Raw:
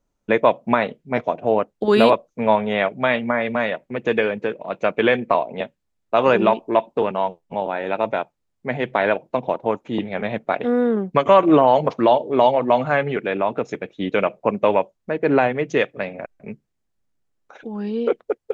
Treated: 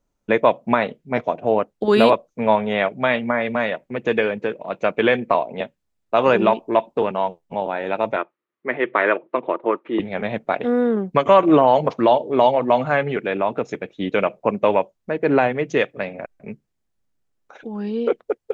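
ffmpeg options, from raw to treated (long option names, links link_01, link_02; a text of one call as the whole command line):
ffmpeg -i in.wav -filter_complex "[0:a]asettb=1/sr,asplit=3[link_01][link_02][link_03];[link_01]atrim=end=8.164[link_04];[link_02]atrim=start=8.16:end=10,asetpts=PTS-STARTPTS,afade=type=in:duration=0.004:curve=qsin,afade=type=out:start_time=1.836:duration=0.004:curve=qsin,highpass=310,equalizer=frequency=350:width_type=q:width=4:gain=10,equalizer=frequency=770:width_type=q:width=4:gain=-7,equalizer=frequency=1200:width_type=q:width=4:gain=9,equalizer=frequency=1900:width_type=q:width=4:gain=5,lowpass=frequency=3200:width=0.5412,lowpass=frequency=3200:width=1.3066[link_05];[link_03]atrim=start=9.996[link_06];[link_04][link_05]acrossfade=duration=0.004:curve1=hsin:curve2=qsin[link_07];[link_07][link_06]acrossfade=duration=0.004:curve1=qsin:curve2=hsin" out.wav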